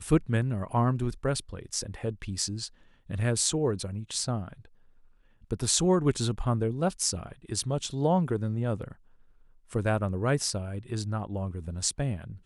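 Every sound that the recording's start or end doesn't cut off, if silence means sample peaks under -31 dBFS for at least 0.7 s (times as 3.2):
5.51–8.88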